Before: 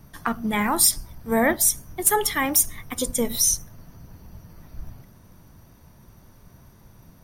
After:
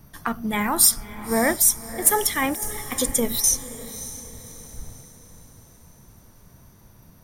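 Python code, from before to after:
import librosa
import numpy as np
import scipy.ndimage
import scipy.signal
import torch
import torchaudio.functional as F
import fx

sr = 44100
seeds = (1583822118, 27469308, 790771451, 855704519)

p1 = fx.high_shelf(x, sr, hz=6500.0, db=4.5)
p2 = fx.over_compress(p1, sr, threshold_db=-21.0, ratio=-0.5, at=(2.42, 3.44))
p3 = p2 + fx.echo_diffused(p2, sr, ms=590, feedback_pct=43, wet_db=-14.0, dry=0)
y = p3 * 10.0 ** (-1.0 / 20.0)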